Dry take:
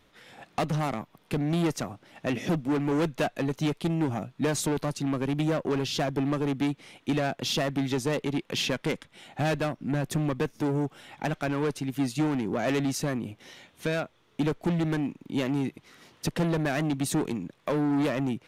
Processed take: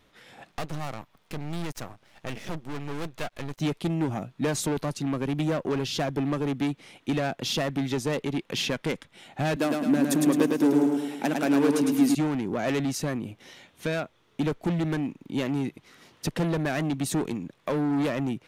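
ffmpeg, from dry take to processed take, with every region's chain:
-filter_complex "[0:a]asettb=1/sr,asplit=3[a][b][c];[a]atrim=end=0.514[d];[b]atrim=start=0.51:end=3.6,asetpts=PTS-STARTPTS,afade=t=in:d=0.004:c=qsin,afade=t=out:st=3.086:d=0.004:c=qsin,equalizer=f=300:w=1.1:g=-7,aeval=exprs='max(val(0),0)':c=same[e];[c]atrim=start=3.596[f];[d][e]acrossfade=d=0.004:c1=hsin:c2=qsin[g];[g][f]acrossfade=d=0.004:c1=qsin:c2=hsin,asettb=1/sr,asplit=3[h][i][j];[h]atrim=end=9.564[k];[i]atrim=start=9.56:end=12.15,asetpts=PTS-STARTPTS,afade=t=in:d=0.004:c=qsin,afade=t=out:st=2.586:d=0.004:c=qsin,highpass=f=260:t=q:w=2.5,highshelf=f=6.3k:g=11,aecho=1:1:107|214|321|428|535|642|749:0.668|0.341|0.174|0.0887|0.0452|0.0231|0.0118,atrim=end_sample=114219[l];[j]atrim=start=12.146[m];[k][l]acrossfade=d=0.004:c1=hsin:c2=qsin[n];[n][m]acrossfade=d=0.004:c1=qsin:c2=hsin"

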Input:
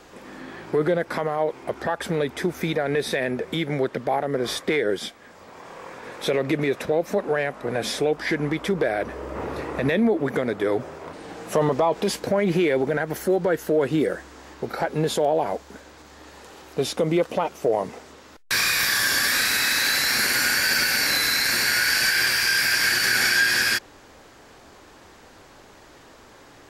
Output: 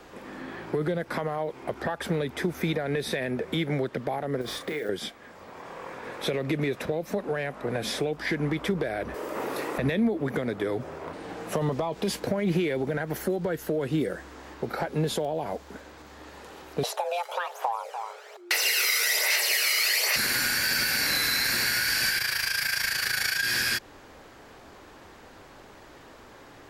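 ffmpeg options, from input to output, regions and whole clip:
-filter_complex "[0:a]asettb=1/sr,asplit=3[a][b][c];[a]atrim=end=4.414[d];[b]atrim=start=4.41:end=4.89,asetpts=PTS-STARTPTS,afade=t=in:d=0.004:c=qsin,afade=t=out:st=0.476:d=0.004:c=qsin,acompressor=threshold=-28dB:ratio=6:attack=3.2:release=140:knee=1:detection=peak,acrusher=bits=5:mode=log:mix=0:aa=0.000001,asplit=2[e][f];[f]adelay=33,volume=-8dB[g];[e][g]amix=inputs=2:normalize=0,atrim=end_sample=21168[h];[c]atrim=start=4.886[i];[d][h]acrossfade=d=0.004:c1=hsin:c2=qsin[j];[j][i]acrossfade=d=0.004:c1=qsin:c2=hsin,asettb=1/sr,asplit=3[k][l][m];[k]atrim=end=9.144[n];[l]atrim=start=9.14:end=9.78,asetpts=PTS-STARTPTS,afade=t=in:d=0.004:c=qsin,afade=t=out:st=0.636:d=0.004:c=qsin,highpass=230,aemphasis=mode=production:type=75kf[o];[m]atrim=start=9.776[p];[n][o]acrossfade=d=0.004:c1=hsin:c2=qsin[q];[q][p]acrossfade=d=0.004:c1=qsin:c2=hsin,asettb=1/sr,asplit=3[r][s][t];[r]atrim=end=16.834[u];[s]atrim=start=16.83:end=20.16,asetpts=PTS-STARTPTS,afade=t=in:d=0.004:c=qsin,afade=t=out:st=3.326:d=0.004:c=qsin,aphaser=in_gain=1:out_gain=1:delay=1.1:decay=0.53:speed=1.2:type=sinusoidal,afreqshift=350,aecho=1:1:291:0.133,atrim=end_sample=146853[v];[t]atrim=start=20.156[w];[u][v]acrossfade=d=0.004:c1=hsin:c2=qsin[x];[x][w]acrossfade=d=0.004:c1=qsin:c2=hsin,asettb=1/sr,asplit=3[y][z][aa];[y]atrim=end=22.184[ab];[z]atrim=start=22.18:end=23.43,asetpts=PTS-STARTPTS,afade=t=in:d=0.004:c=qsin,afade=t=out:st=1.246:d=0.004:c=qsin,tremolo=f=27:d=0.75,equalizer=f=290:w=1.8:g=-13,asplit=2[ac][ad];[ad]adelay=30,volume=-7dB[ae];[ac][ae]amix=inputs=2:normalize=0,atrim=end_sample=55125[af];[aa]atrim=start=23.426[ag];[ab][af]acrossfade=d=0.004:c1=hsin:c2=qsin[ah];[ah][ag]acrossfade=d=0.004:c1=qsin:c2=hsin,acrossover=split=210|3000[ai][aj][ak];[aj]acompressor=threshold=-27dB:ratio=6[al];[ai][al][ak]amix=inputs=3:normalize=0,equalizer=f=6.9k:w=0.73:g=-5"

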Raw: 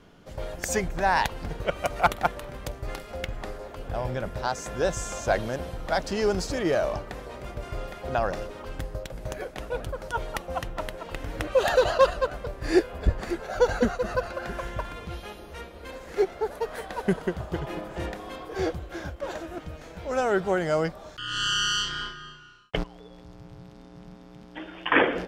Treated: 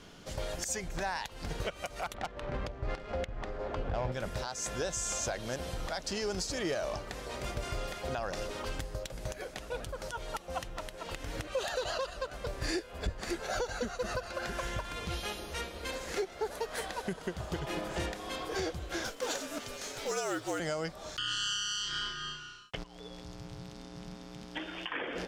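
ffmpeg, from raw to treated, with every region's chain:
-filter_complex "[0:a]asettb=1/sr,asplit=3[a][b][c];[a]atrim=end=2.144[d];[b]atrim=start=2.14:end=4.12,asetpts=PTS-STARTPTS,afade=t=in:d=0.004:c=qsin,afade=t=out:st=1.976:d=0.004:c=qsin,aeval=exprs='0.355*sin(PI/2*1.58*val(0)/0.355)':c=same,adynamicsmooth=sensitivity=1:basefreq=1.7k[e];[c]atrim=start=4.116[f];[d][e]acrossfade=d=0.004:c1=hsin:c2=qsin[g];[g][f]acrossfade=d=0.004:c1=qsin:c2=hsin,asettb=1/sr,asplit=3[h][i][j];[h]atrim=end=19.044[k];[i]atrim=start=19.04:end=20.6,asetpts=PTS-STARTPTS,afade=t=in:d=0.004:c=qsin,afade=t=out:st=1.556:d=0.004:c=qsin,bass=f=250:g=-12,treble=f=4k:g=6,acrusher=bits=7:mode=log:mix=0:aa=0.000001,afreqshift=-61[l];[j]atrim=start=20.596[m];[k][l]acrossfade=d=0.004:c1=hsin:c2=qsin[n];[n][m]acrossfade=d=0.004:c1=qsin:c2=hsin,acompressor=threshold=-33dB:ratio=2,equalizer=f=6.4k:t=o:w=2.5:g=10.5,alimiter=limit=-24dB:level=0:latency=1:release=326"

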